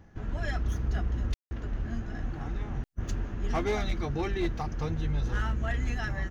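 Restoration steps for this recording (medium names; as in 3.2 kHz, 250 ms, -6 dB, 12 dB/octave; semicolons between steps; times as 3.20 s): clip repair -22.5 dBFS; room tone fill 1.34–1.51 s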